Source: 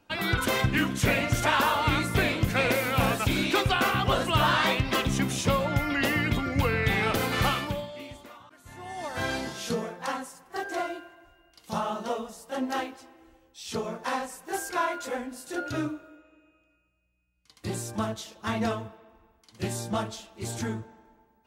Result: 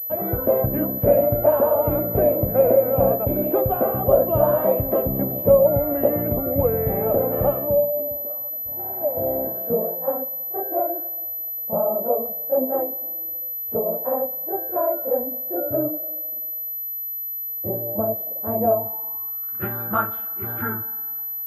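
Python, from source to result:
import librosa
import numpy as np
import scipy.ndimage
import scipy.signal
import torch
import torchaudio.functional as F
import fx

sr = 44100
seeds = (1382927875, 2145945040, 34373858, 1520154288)

y = fx.spec_repair(x, sr, seeds[0], start_s=8.82, length_s=0.56, low_hz=680.0, high_hz=3000.0, source='after')
y = fx.filter_sweep_lowpass(y, sr, from_hz=590.0, to_hz=1400.0, start_s=18.61, end_s=19.49, q=7.0)
y = fx.pwm(y, sr, carrier_hz=12000.0)
y = F.gain(torch.from_numpy(y), 1.0).numpy()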